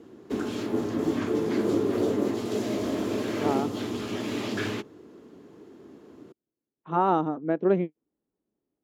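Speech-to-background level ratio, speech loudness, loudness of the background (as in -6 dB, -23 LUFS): 1.5 dB, -27.5 LUFS, -29.0 LUFS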